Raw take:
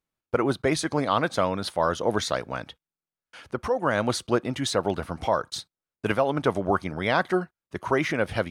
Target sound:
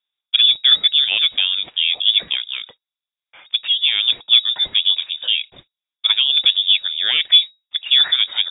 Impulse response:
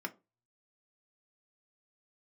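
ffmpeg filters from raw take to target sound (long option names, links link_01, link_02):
-af "equalizer=frequency=330:width=1.6:gain=14,aeval=exprs='0.708*(cos(1*acos(clip(val(0)/0.708,-1,1)))-cos(1*PI/2))+0.0251*(cos(4*acos(clip(val(0)/0.708,-1,1)))-cos(4*PI/2))':channel_layout=same,lowpass=frequency=3200:width_type=q:width=0.5098,lowpass=frequency=3200:width_type=q:width=0.6013,lowpass=frequency=3200:width_type=q:width=0.9,lowpass=frequency=3200:width_type=q:width=2.563,afreqshift=-3800,volume=1dB"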